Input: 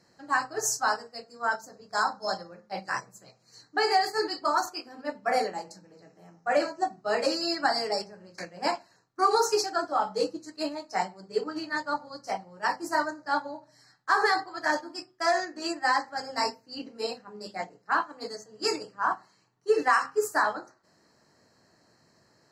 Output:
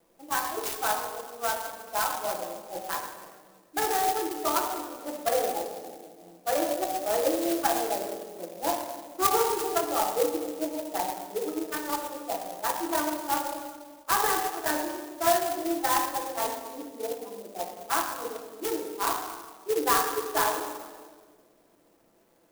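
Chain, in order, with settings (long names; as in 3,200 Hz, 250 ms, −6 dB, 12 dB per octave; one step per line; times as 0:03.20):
adaptive Wiener filter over 25 samples
high-pass filter 230 Hz 24 dB per octave
parametric band 610 Hz +5 dB 2.1 octaves
in parallel at −3 dB: brickwall limiter −19.5 dBFS, peak gain reduction 12.5 dB
on the sum: bit reduction 10 bits
on a send at −1 dB: convolution reverb RT60 1.6 s, pre-delay 6 ms
on the sum: converter with an unsteady clock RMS 0.083 ms
level −7.5 dB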